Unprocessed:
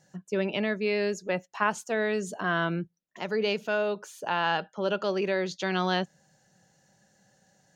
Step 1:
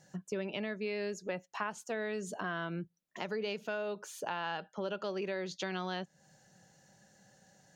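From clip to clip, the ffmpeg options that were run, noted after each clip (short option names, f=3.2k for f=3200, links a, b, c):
-af "acompressor=threshold=-38dB:ratio=3,volume=1dB"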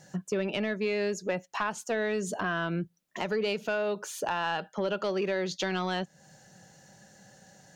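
-af "asoftclip=type=tanh:threshold=-26.5dB,volume=8dB"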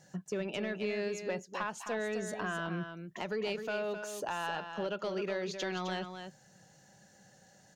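-af "aecho=1:1:260:0.398,volume=-6dB"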